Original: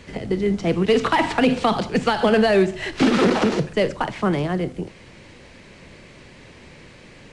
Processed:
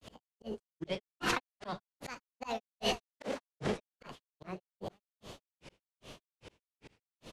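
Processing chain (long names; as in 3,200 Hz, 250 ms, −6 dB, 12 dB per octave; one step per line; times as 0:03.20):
on a send: repeating echo 220 ms, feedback 37%, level −11 dB
on the sum: formants moved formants +5 semitones
granular cloud 203 ms, grains 2.5 per second, spray 19 ms, pitch spread up and down by 3 semitones
volume swells 442 ms
level −3 dB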